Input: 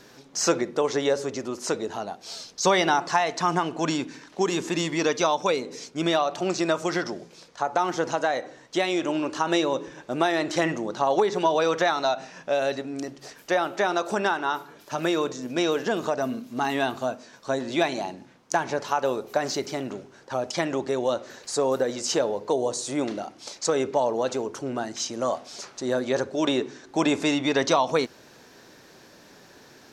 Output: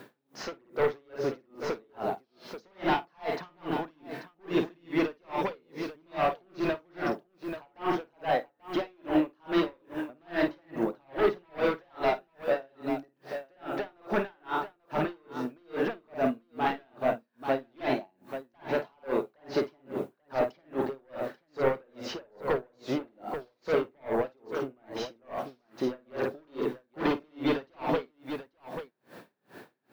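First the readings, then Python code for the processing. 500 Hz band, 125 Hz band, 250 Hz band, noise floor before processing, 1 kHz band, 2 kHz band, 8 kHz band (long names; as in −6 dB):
−6.0 dB, −6.0 dB, −4.5 dB, −52 dBFS, −7.5 dB, −7.5 dB, below −20 dB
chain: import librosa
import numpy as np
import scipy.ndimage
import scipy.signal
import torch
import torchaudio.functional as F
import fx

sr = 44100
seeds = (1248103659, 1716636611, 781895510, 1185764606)

p1 = scipy.signal.sosfilt(scipy.signal.butter(2, 110.0, 'highpass', fs=sr, output='sos'), x)
p2 = fx.fold_sine(p1, sr, drive_db=15, ceiling_db=-7.0)
p3 = p1 + (p2 * 10.0 ** (-8.5 / 20.0))
p4 = scipy.ndimage.gaussian_filter1d(p3, 2.6, mode='constant')
p5 = fx.dmg_noise_colour(p4, sr, seeds[0], colour='blue', level_db=-56.0)
p6 = p5 + fx.echo_multitap(p5, sr, ms=(52, 837), db=(-4.5, -8.5), dry=0)
p7 = p6 * 10.0 ** (-39 * (0.5 - 0.5 * np.cos(2.0 * np.pi * 2.4 * np.arange(len(p6)) / sr)) / 20.0)
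y = p7 * 10.0 ** (-8.0 / 20.0)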